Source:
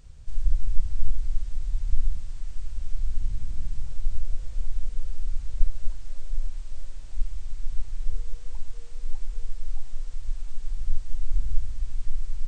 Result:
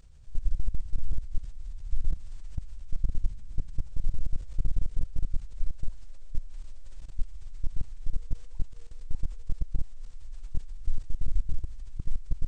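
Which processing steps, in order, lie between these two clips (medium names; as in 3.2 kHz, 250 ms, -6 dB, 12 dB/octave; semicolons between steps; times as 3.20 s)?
level held to a coarse grid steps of 17 dB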